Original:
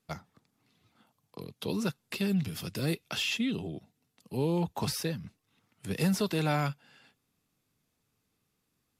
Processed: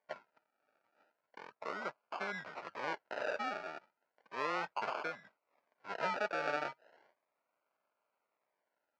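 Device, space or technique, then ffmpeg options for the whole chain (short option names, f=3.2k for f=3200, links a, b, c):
circuit-bent sampling toy: -filter_complex "[0:a]acrusher=samples=33:mix=1:aa=0.000001:lfo=1:lforange=19.8:lforate=0.35,highpass=590,equalizer=f=610:t=q:w=4:g=8,equalizer=f=960:t=q:w=4:g=5,equalizer=f=1.4k:t=q:w=4:g=9,equalizer=f=2.3k:t=q:w=4:g=5,equalizer=f=3.5k:t=q:w=4:g=-7,lowpass=f=4.7k:w=0.5412,lowpass=f=4.7k:w=1.3066,asettb=1/sr,asplit=3[a][b][c];[a]atrim=end=1.504[d];[b]atrim=start=1.5:end=1.98,asetpts=PTS-STARTPTS,afade=t=in:d=0.004:c=qsin,afade=t=out:st=0.476:d=0.004:c=qsin,equalizer=f=2.8k:t=o:w=1.2:g=-4.5[e];[c]atrim=start=1.976[f];[d][e]acrossfade=d=0.004:c1=hsin:c2=qsin[g];[g][f]acrossfade=d=0.004:c1=qsin:c2=hsin,volume=-5dB"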